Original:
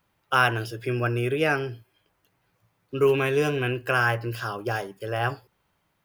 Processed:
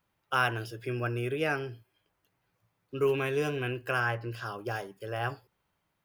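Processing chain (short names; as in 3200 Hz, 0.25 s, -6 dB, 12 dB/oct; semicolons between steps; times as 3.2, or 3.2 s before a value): 3.99–4.45 high shelf 6500 Hz -> 10000 Hz -10 dB; gain -6.5 dB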